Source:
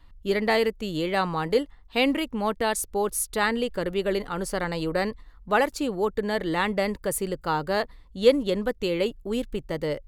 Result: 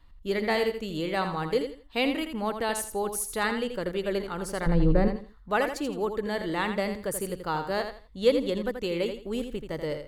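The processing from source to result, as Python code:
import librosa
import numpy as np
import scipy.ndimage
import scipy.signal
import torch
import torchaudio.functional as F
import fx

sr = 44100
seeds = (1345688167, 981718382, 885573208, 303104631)

p1 = fx.tilt_eq(x, sr, slope=-4.5, at=(4.66, 5.08))
p2 = p1 + fx.echo_feedback(p1, sr, ms=82, feedback_pct=25, wet_db=-8.0, dry=0)
y = F.gain(torch.from_numpy(p2), -4.0).numpy()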